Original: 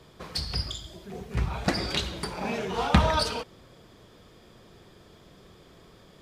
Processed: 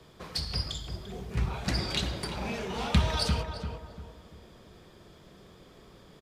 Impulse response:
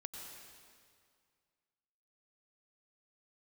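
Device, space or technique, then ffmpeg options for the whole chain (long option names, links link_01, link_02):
one-band saturation: -filter_complex "[0:a]acrossover=split=200|2200[link_01][link_02][link_03];[link_02]asoftclip=type=tanh:threshold=-32.5dB[link_04];[link_01][link_04][link_03]amix=inputs=3:normalize=0,asplit=2[link_05][link_06];[link_06]adelay=344,lowpass=frequency=1300:poles=1,volume=-5dB,asplit=2[link_07][link_08];[link_08]adelay=344,lowpass=frequency=1300:poles=1,volume=0.39,asplit=2[link_09][link_10];[link_10]adelay=344,lowpass=frequency=1300:poles=1,volume=0.39,asplit=2[link_11][link_12];[link_12]adelay=344,lowpass=frequency=1300:poles=1,volume=0.39,asplit=2[link_13][link_14];[link_14]adelay=344,lowpass=frequency=1300:poles=1,volume=0.39[link_15];[link_05][link_07][link_09][link_11][link_13][link_15]amix=inputs=6:normalize=0,volume=-1.5dB"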